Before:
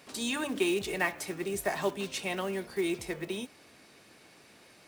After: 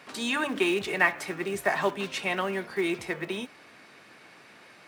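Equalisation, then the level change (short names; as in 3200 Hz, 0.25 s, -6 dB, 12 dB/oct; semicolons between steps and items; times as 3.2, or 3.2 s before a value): HPF 130 Hz 12 dB/oct; low shelf 220 Hz +11.5 dB; bell 1500 Hz +13.5 dB 2.9 oct; -5.0 dB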